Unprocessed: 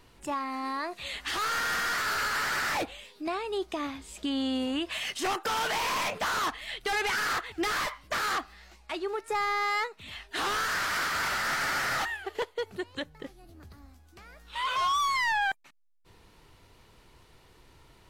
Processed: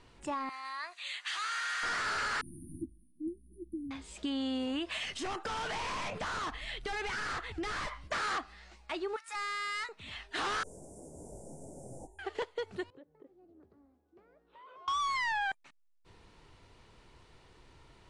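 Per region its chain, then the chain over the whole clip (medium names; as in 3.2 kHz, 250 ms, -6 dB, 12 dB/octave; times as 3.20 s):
0.49–1.83 s: high-pass 1.4 kHz + band-stop 5.3 kHz, Q 10 + overload inside the chain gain 25 dB
2.41–3.91 s: brick-wall FIR band-stop 360–9100 Hz + doubling 12 ms -8 dB
5.04–8.08 s: bass shelf 160 Hz +11.5 dB + compression 3:1, threshold -33 dBFS
9.16–9.89 s: high-pass 1.1 kHz 24 dB/octave + treble shelf 4.9 kHz +5.5 dB + hard clipper -33 dBFS
10.63–12.19 s: inverse Chebyshev band-stop 1.2–4.4 kHz, stop band 50 dB + detune thickener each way 49 cents
12.90–14.88 s: band-pass filter 400 Hz, Q 2.2 + compression 3:1, threshold -52 dBFS
whole clip: steep low-pass 10 kHz 48 dB/octave; treble shelf 6.6 kHz -5.5 dB; compression 2.5:1, threshold -31 dBFS; trim -1.5 dB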